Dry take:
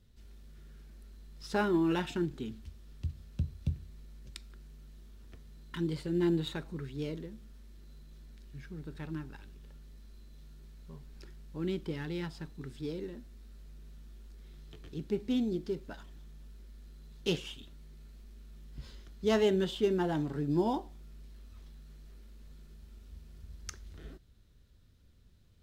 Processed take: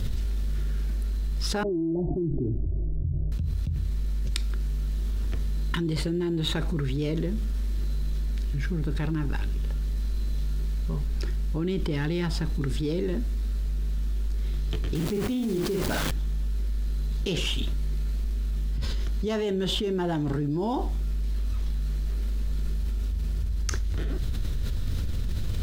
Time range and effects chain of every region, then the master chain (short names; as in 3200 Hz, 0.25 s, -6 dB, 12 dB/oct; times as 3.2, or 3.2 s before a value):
1.63–3.32 steep low-pass 630 Hz 48 dB/oct + fixed phaser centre 320 Hz, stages 8
14.95–16.11 requantised 8-bit, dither none + doubler 48 ms -4 dB
whole clip: low shelf 71 Hz +10.5 dB; fast leveller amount 100%; gain -4 dB